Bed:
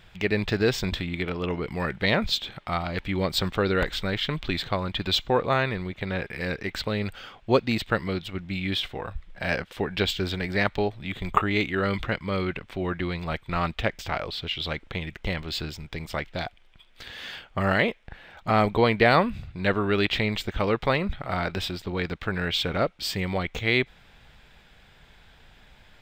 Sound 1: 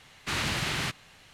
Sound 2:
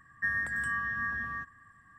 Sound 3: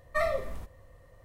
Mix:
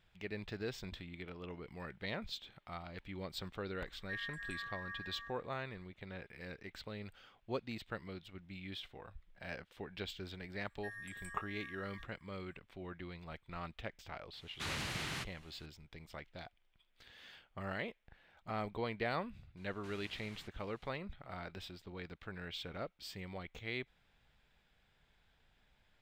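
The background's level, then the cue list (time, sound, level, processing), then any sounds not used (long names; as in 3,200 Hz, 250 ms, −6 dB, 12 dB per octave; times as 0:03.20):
bed −18.5 dB
0:03.87: mix in 2 −12 dB + high-pass filter 950 Hz 6 dB per octave
0:10.61: mix in 2 −6 dB + first difference
0:14.33: mix in 1 −10.5 dB
0:19.57: mix in 1 −17 dB + downward compressor 2.5 to 1, threshold −42 dBFS
not used: 3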